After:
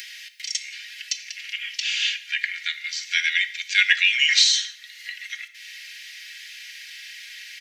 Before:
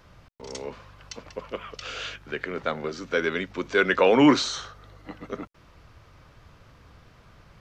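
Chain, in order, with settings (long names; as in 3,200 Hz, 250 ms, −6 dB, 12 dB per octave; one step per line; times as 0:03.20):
Butterworth high-pass 1,800 Hz 72 dB per octave
reverb whose tail is shaped and stops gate 200 ms falling, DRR 11.5 dB
in parallel at +2.5 dB: upward compression, threshold −34 dBFS
on the sum: comb filter 4.2 ms
level +3.5 dB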